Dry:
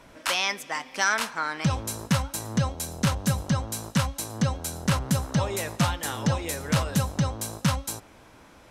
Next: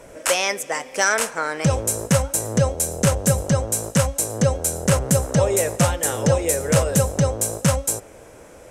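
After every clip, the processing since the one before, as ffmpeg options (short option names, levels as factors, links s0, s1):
-af "equalizer=f=250:t=o:w=1:g=-5,equalizer=f=500:t=o:w=1:g=11,equalizer=f=1000:t=o:w=1:g=-6,equalizer=f=4000:t=o:w=1:g=-9,equalizer=f=8000:t=o:w=1:g=9,volume=2"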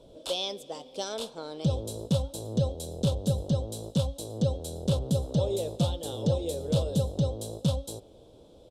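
-af "firequalizer=gain_entry='entry(330,0);entry(870,-8);entry(1900,-29);entry(3500,8);entry(6100,-14)':delay=0.05:min_phase=1,volume=0.447"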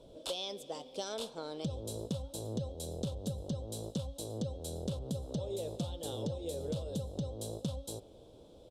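-af "acompressor=threshold=0.0282:ratio=12,volume=0.75"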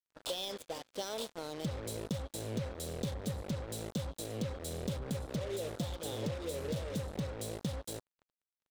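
-af "acrusher=bits=6:mix=0:aa=0.5"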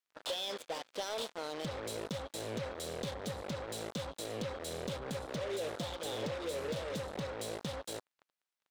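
-filter_complex "[0:a]asplit=2[s0][s1];[s1]highpass=f=720:p=1,volume=7.08,asoftclip=type=tanh:threshold=0.0794[s2];[s0][s2]amix=inputs=2:normalize=0,lowpass=f=3700:p=1,volume=0.501,volume=0.631"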